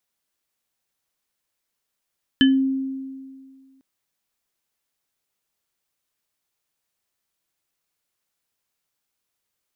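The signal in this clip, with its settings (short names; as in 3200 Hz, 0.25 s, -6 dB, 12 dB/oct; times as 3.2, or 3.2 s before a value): sine partials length 1.40 s, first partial 267 Hz, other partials 1720/3050 Hz, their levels -7/-3.5 dB, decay 1.95 s, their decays 0.21/0.21 s, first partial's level -11 dB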